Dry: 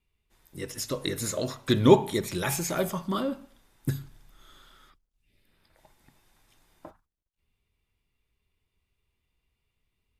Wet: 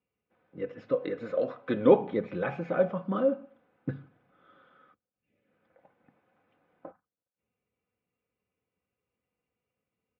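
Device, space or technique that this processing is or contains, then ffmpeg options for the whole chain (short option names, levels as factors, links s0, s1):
bass cabinet: -filter_complex "[0:a]highpass=160,asettb=1/sr,asplit=3[s0][s1][s2];[s0]atrim=end=0.964[s3];[s1]atrim=start=0.96:end=2.01,asetpts=PTS-STARTPTS,afade=t=in:d=0.004:c=qsin,afade=t=out:st=1.046:d=0.004:c=qsin,bass=f=250:g=-7,treble=f=4000:g=4[s4];[s2]atrim=start=2.006[s5];[s3][s4]acrossfade=d=0.004:c1=hsin:c2=qsin[s6];[s6][s5]acrossfade=d=0.004:c1=qsin:c2=hsin,highpass=72,equalizer=f=120:t=q:w=4:g=7,equalizer=f=250:t=q:w=4:g=-5,equalizer=f=540:t=q:w=4:g=6,equalizer=f=970:t=q:w=4:g=-7,equalizer=f=1900:t=q:w=4:g=-8,lowpass=f=2100:w=0.5412,lowpass=f=2100:w=1.3066,highshelf=f=6300:g=-5.5,aecho=1:1:4:0.56"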